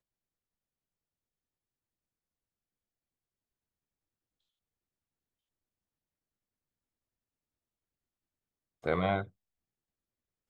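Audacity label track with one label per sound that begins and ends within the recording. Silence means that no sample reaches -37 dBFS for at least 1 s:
8.860000	9.230000	sound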